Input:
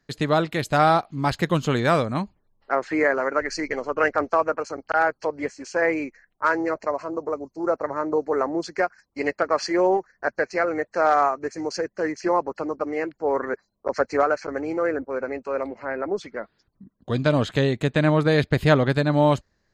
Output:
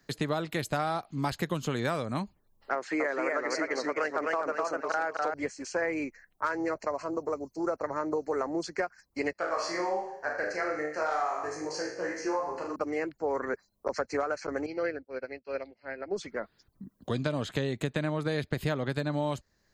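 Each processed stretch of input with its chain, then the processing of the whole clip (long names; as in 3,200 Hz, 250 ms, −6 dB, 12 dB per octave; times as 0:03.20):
0:02.75–0:05.34: high-pass filter 230 Hz + feedback echo with a swinging delay time 254 ms, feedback 32%, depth 125 cents, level −4 dB
0:09.33–0:12.76: low-shelf EQ 330 Hz −7 dB + flutter between parallel walls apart 6.8 metres, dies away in 0.64 s + micro pitch shift up and down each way 15 cents
0:14.66–0:16.16: drawn EQ curve 690 Hz 0 dB, 1,100 Hz −8 dB, 1,600 Hz +2 dB, 4,800 Hz +13 dB, 8,300 Hz −27 dB + expander for the loud parts 2.5 to 1, over −38 dBFS
whole clip: downward compressor, threshold −21 dBFS; high-shelf EQ 7,800 Hz +11 dB; multiband upward and downward compressor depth 40%; level −5 dB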